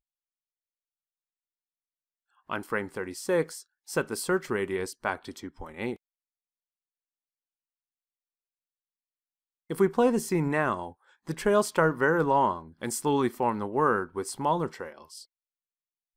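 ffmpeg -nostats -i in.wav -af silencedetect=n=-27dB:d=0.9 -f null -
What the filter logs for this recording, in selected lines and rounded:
silence_start: 0.00
silence_end: 2.52 | silence_duration: 2.52
silence_start: 5.93
silence_end: 9.71 | silence_duration: 3.78
silence_start: 14.84
silence_end: 16.17 | silence_duration: 1.33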